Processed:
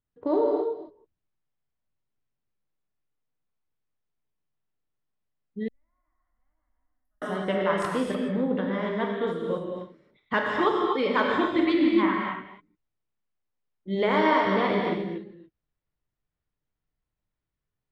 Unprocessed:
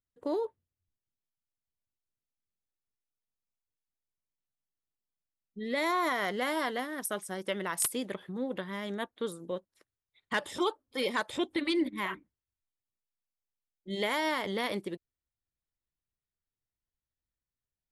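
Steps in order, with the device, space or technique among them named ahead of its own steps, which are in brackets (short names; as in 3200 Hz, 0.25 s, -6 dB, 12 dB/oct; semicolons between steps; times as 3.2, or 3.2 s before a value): reverse delay 0.152 s, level -12.5 dB; phone in a pocket (LPF 3700 Hz 12 dB/oct; bell 160 Hz +3 dB 0.43 oct; high shelf 2000 Hz -9 dB); non-linear reverb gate 0.31 s flat, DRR -1 dB; dynamic EQ 1200 Hz, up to +4 dB, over -43 dBFS, Q 2.1; 5.68–7.22 inverse Chebyshev band-stop 170–8600 Hz, stop band 60 dB; gain +6 dB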